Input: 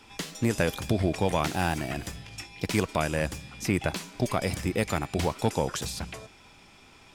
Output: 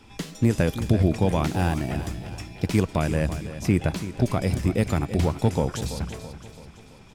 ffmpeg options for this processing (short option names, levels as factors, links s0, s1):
-filter_complex "[0:a]lowshelf=f=380:g=11,asplit=2[s0][s1];[s1]aecho=0:1:333|666|999|1332|1665:0.237|0.123|0.0641|0.0333|0.0173[s2];[s0][s2]amix=inputs=2:normalize=0,volume=0.75"